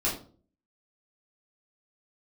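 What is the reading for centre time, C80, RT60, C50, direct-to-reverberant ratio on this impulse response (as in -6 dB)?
29 ms, 12.0 dB, 0.45 s, 7.5 dB, -7.5 dB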